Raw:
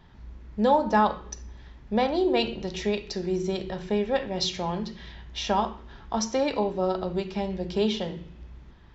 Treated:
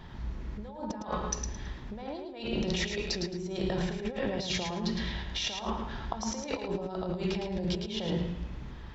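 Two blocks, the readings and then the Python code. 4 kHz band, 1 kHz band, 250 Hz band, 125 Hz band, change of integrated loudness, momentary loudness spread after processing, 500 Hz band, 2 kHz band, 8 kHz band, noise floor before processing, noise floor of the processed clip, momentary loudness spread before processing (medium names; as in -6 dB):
-2.5 dB, -12.0 dB, -5.5 dB, +0.5 dB, -7.0 dB, 9 LU, -9.0 dB, -3.0 dB, no reading, -50 dBFS, -43 dBFS, 17 LU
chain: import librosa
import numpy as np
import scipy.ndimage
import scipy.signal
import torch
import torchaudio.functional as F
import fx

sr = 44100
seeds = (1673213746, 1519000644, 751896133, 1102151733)

p1 = fx.over_compress(x, sr, threshold_db=-36.0, ratio=-1.0)
y = p1 + fx.echo_feedback(p1, sr, ms=109, feedback_pct=25, wet_db=-6, dry=0)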